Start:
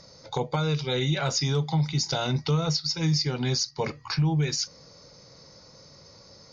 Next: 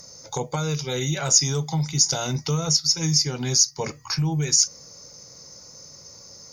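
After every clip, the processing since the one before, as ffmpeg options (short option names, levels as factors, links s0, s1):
-af "aexciter=amount=11.4:drive=3.4:freq=6000"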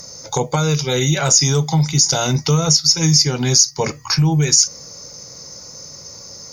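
-af "alimiter=level_in=2.99:limit=0.891:release=50:level=0:latency=1,volume=0.891"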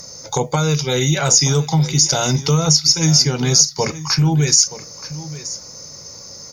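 -af "aecho=1:1:926:0.168"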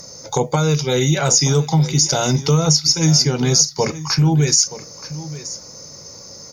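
-af "equalizer=f=340:w=0.44:g=4,volume=0.794"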